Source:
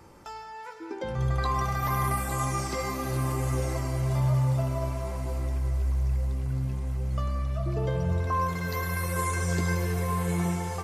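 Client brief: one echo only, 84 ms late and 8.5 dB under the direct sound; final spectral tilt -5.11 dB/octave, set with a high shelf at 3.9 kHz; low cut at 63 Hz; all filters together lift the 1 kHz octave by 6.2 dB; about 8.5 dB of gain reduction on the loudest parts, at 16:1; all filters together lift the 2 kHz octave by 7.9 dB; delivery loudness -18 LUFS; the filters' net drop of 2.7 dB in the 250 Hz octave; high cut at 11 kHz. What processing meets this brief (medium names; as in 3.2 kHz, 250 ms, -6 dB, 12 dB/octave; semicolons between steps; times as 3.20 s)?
high-pass 63 Hz; low-pass 11 kHz; peaking EQ 250 Hz -5.5 dB; peaking EQ 1 kHz +5 dB; peaking EQ 2 kHz +7.5 dB; treble shelf 3.9 kHz +3.5 dB; compression 16:1, threshold -27 dBFS; delay 84 ms -8.5 dB; trim +13 dB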